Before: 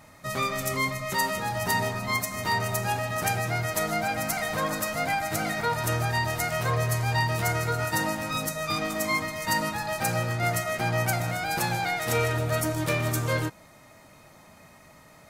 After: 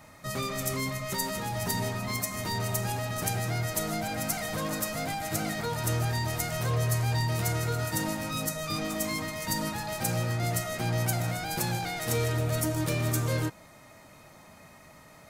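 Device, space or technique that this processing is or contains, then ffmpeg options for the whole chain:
one-band saturation: -filter_complex "[0:a]acrossover=split=480|4400[link_01][link_02][link_03];[link_02]asoftclip=type=tanh:threshold=-35dB[link_04];[link_01][link_04][link_03]amix=inputs=3:normalize=0"

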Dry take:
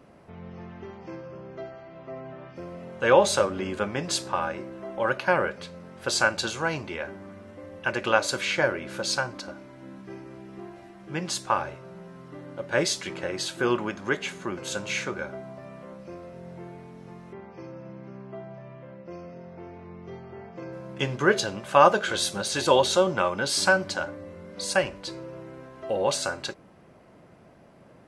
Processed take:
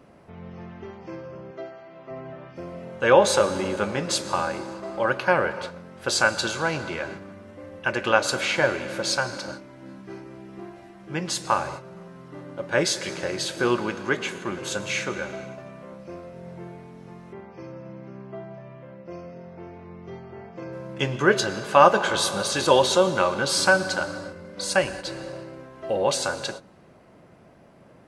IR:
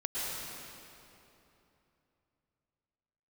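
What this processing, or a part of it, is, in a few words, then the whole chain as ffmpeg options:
keyed gated reverb: -filter_complex "[0:a]asettb=1/sr,asplit=3[link_01][link_02][link_03];[link_01]atrim=end=1.514[link_04];[link_02]atrim=start=1.51:end=2.11,asetpts=PTS-STARTPTS,afade=type=in:duration=0.004:curve=qsin,afade=type=out:start_time=0.596:duration=0.004:curve=qsin,highpass=frequency=250:poles=1[link_05];[link_03]atrim=start=2.106[link_06];[link_04][link_05]acrossfade=duration=0.004:curve1=hsin:curve2=qsin[link_07];[link_07][link_06]acrossfade=duration=0.004:curve1=qsin:curve2=hsin,asplit=3[link_08][link_09][link_10];[1:a]atrim=start_sample=2205[link_11];[link_09][link_11]afir=irnorm=-1:irlink=0[link_12];[link_10]apad=whole_len=1237917[link_13];[link_12][link_13]sidechaingate=range=-25dB:threshold=-40dB:ratio=16:detection=peak,volume=-15.5dB[link_14];[link_08][link_14]amix=inputs=2:normalize=0,volume=1dB"

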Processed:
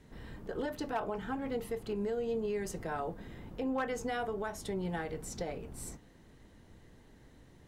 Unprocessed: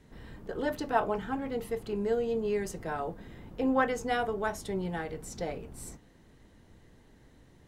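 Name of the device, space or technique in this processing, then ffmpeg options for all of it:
clipper into limiter: -af "asoftclip=type=hard:threshold=-19dB,alimiter=level_in=3dB:limit=-24dB:level=0:latency=1:release=199,volume=-3dB"

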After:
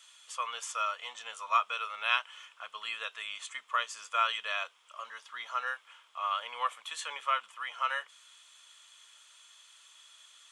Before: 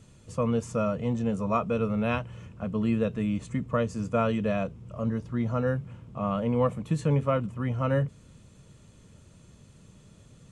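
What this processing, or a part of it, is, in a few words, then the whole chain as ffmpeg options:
headphones lying on a table: -af "highpass=frequency=1100:width=0.5412,highpass=frequency=1100:width=1.3066,equalizer=frequency=3300:width_type=o:width=0.24:gain=11,volume=5dB"

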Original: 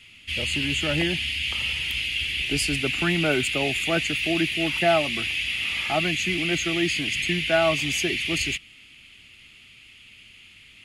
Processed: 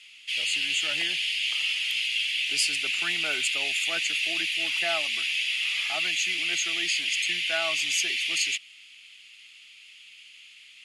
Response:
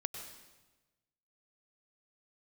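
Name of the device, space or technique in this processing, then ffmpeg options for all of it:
piezo pickup straight into a mixer: -af "lowpass=6100,aderivative,volume=8dB"

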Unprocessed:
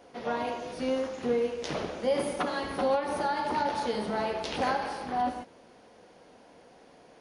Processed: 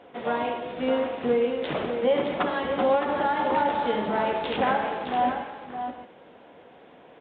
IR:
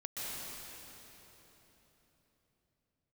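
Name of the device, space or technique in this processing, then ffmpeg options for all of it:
Bluetooth headset: -af "highpass=frequency=100:poles=1,aecho=1:1:614:0.398,aresample=8000,aresample=44100,volume=4.5dB" -ar 16000 -c:a sbc -b:a 64k

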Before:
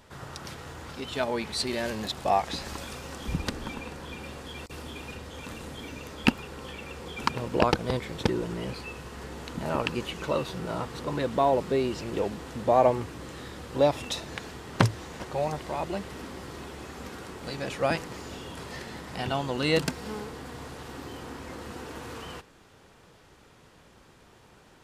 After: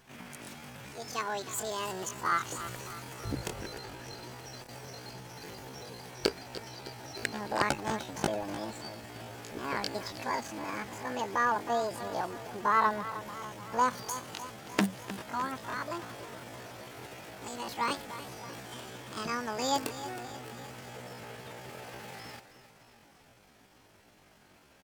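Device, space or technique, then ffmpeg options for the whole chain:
chipmunk voice: -af "aecho=1:1:306|612|918|1224|1530|1836:0.211|0.123|0.0711|0.0412|0.0239|0.0139,asetrate=76340,aresample=44100,atempo=0.577676,volume=-5dB"

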